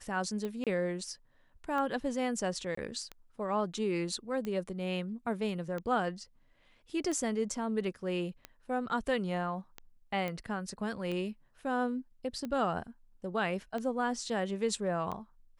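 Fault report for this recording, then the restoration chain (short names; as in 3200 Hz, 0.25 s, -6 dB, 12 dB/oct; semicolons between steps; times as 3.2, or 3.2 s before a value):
tick 45 rpm -25 dBFS
0.64–0.67 gap 27 ms
2.75–2.77 gap 24 ms
10.28 pop -23 dBFS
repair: de-click; interpolate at 0.64, 27 ms; interpolate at 2.75, 24 ms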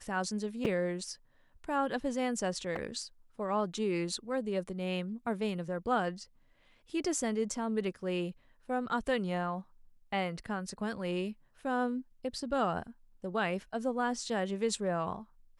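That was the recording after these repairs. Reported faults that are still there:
10.28 pop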